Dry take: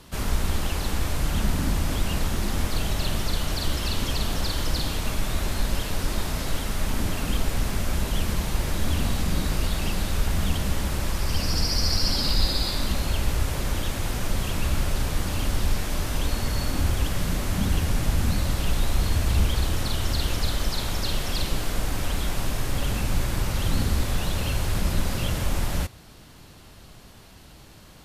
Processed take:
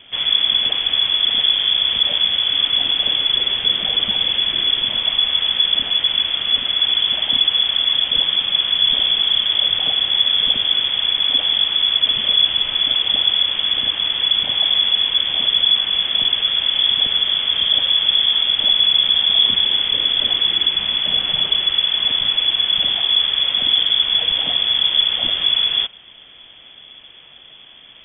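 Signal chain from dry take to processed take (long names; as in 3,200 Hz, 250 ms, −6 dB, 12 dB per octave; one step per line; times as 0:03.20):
in parallel at −4.5 dB: gain into a clipping stage and back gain 17.5 dB
on the sum: voice inversion scrambler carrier 3,400 Hz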